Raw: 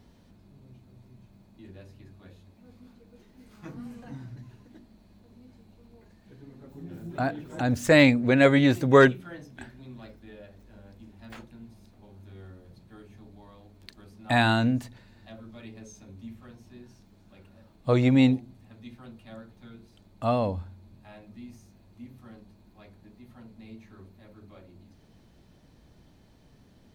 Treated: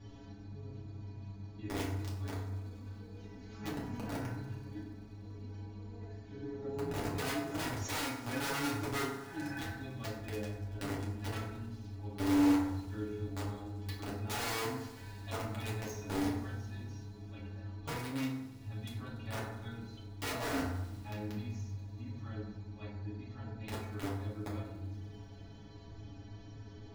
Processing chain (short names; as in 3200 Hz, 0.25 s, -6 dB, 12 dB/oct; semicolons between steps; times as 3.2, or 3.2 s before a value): spectral repair 8.96–9.59, 430–2700 Hz after; Chebyshev low-pass 7200 Hz, order 8; low shelf 120 Hz +7.5 dB; compressor 8:1, threshold -36 dBFS, peak gain reduction 22.5 dB; metallic resonator 99 Hz, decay 0.26 s, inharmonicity 0.008; wrapped overs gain 44.5 dB; thin delay 96 ms, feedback 82%, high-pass 3200 Hz, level -17.5 dB; reverb RT60 0.95 s, pre-delay 4 ms, DRR -6.5 dB; gain +6.5 dB